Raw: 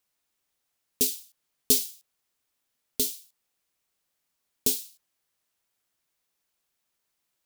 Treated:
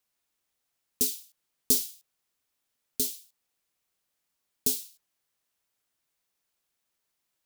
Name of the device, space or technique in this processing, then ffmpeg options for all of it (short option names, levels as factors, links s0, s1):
one-band saturation: -filter_complex "[0:a]acrossover=split=430|4100[s0][s1][s2];[s1]asoftclip=type=tanh:threshold=0.01[s3];[s0][s3][s2]amix=inputs=3:normalize=0,volume=0.841"